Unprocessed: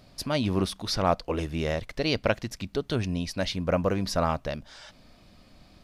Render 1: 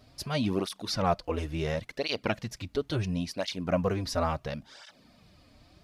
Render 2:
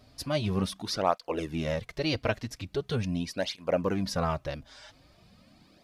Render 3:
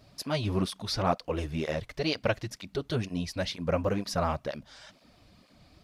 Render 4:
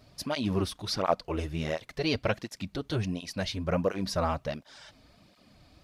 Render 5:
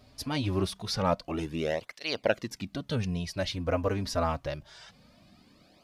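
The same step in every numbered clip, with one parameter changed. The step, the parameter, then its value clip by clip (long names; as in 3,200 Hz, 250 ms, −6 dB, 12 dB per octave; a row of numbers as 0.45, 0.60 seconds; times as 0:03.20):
through-zero flanger with one copy inverted, nulls at: 0.72, 0.42, 2.1, 1.4, 0.25 Hertz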